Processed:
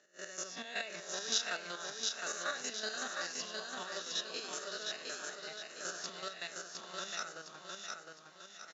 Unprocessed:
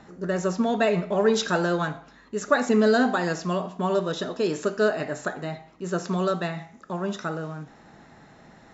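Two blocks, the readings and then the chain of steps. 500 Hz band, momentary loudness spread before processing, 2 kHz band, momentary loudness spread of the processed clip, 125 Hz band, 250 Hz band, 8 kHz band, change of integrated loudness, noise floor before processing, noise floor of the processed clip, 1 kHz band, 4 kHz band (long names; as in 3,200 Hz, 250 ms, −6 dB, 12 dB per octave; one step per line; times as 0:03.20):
−22.0 dB, 14 LU, −10.5 dB, 10 LU, −31.0 dB, −28.0 dB, can't be measured, −14.0 dB, −52 dBFS, −57 dBFS, −16.0 dB, −1.5 dB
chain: peak hold with a rise ahead of every peak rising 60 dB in 0.96 s
camcorder AGC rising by 7 dB per second
Butterworth low-pass 6,800 Hz 72 dB per octave
first difference
noise gate −49 dBFS, range −12 dB
square-wave tremolo 5.3 Hz, depth 60%, duty 30%
high-pass filter 120 Hz
parametric band 960 Hz −5 dB 0.59 octaves
repeating echo 710 ms, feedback 42%, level −3.5 dB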